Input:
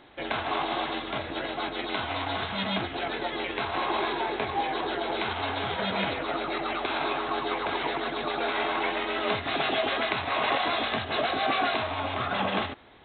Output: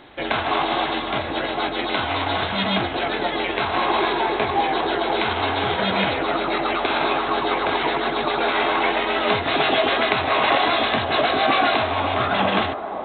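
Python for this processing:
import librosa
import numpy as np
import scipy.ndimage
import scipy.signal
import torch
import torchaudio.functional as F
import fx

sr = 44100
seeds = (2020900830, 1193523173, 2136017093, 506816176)

y = fx.echo_wet_bandpass(x, sr, ms=514, feedback_pct=78, hz=530.0, wet_db=-9.5)
y = F.gain(torch.from_numpy(y), 7.5).numpy()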